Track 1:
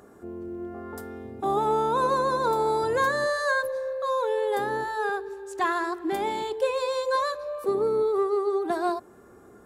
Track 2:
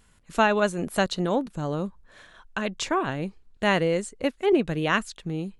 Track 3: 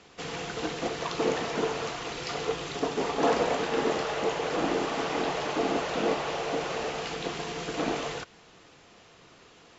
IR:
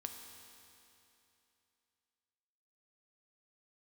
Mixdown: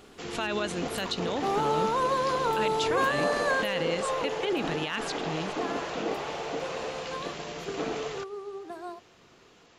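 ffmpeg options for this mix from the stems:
-filter_complex "[0:a]volume=-3dB,afade=type=out:start_time=3.91:duration=0.63:silence=0.298538[link_01];[1:a]equalizer=frequency=3400:width=0.76:gain=13,volume=-5dB[link_02];[2:a]volume=-3.5dB[link_03];[link_02][link_03]amix=inputs=2:normalize=0,asoftclip=type=hard:threshold=-10dB,alimiter=limit=-21dB:level=0:latency=1:release=57,volume=0dB[link_04];[link_01][link_04]amix=inputs=2:normalize=0"

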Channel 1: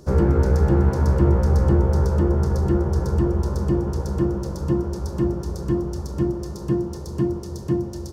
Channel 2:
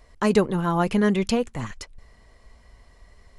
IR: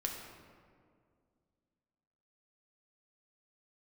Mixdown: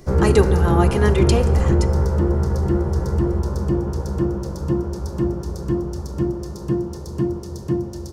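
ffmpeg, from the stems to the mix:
-filter_complex "[0:a]volume=0.5dB[link_01];[1:a]highshelf=frequency=8200:gain=9.5,aecho=1:1:2.5:0.49,volume=-2.5dB,asplit=2[link_02][link_03];[link_03]volume=-5.5dB[link_04];[2:a]atrim=start_sample=2205[link_05];[link_04][link_05]afir=irnorm=-1:irlink=0[link_06];[link_01][link_02][link_06]amix=inputs=3:normalize=0"

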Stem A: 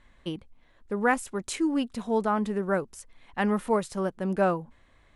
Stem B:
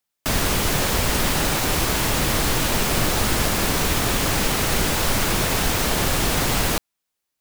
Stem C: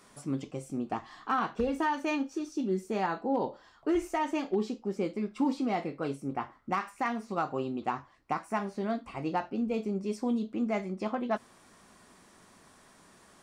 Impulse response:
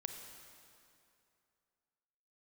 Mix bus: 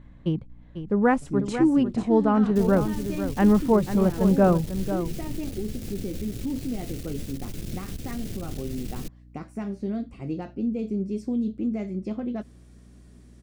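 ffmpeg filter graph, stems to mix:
-filter_complex "[0:a]lowpass=7100,equalizer=frequency=130:width_type=o:width=0.76:gain=11.5,volume=0.5dB,asplit=2[link_01][link_02];[link_02]volume=-10dB[link_03];[1:a]equalizer=frequency=1000:width_type=o:width=1.6:gain=-9,aeval=exprs='clip(val(0),-1,0.0299)':channel_layout=same,adelay=2300,volume=-9dB[link_04];[2:a]adelay=1050,volume=1.5dB[link_05];[link_04][link_05]amix=inputs=2:normalize=0,equalizer=frequency=960:width=0.97:gain=-15,alimiter=level_in=1dB:limit=-24dB:level=0:latency=1:release=64,volume=-1dB,volume=0dB[link_06];[link_03]aecho=0:1:495:1[link_07];[link_01][link_06][link_07]amix=inputs=3:normalize=0,tiltshelf=frequency=970:gain=6,aeval=exprs='val(0)+0.00355*(sin(2*PI*60*n/s)+sin(2*PI*2*60*n/s)/2+sin(2*PI*3*60*n/s)/3+sin(2*PI*4*60*n/s)/4+sin(2*PI*5*60*n/s)/5)':channel_layout=same"

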